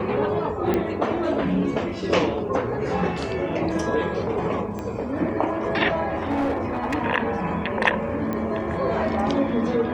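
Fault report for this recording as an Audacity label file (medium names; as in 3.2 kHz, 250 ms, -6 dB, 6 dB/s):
0.740000	0.740000	pop -11 dBFS
4.790000	4.790000	pop -19 dBFS
6.270000	6.950000	clipped -19.5 dBFS
8.330000	8.330000	pop -16 dBFS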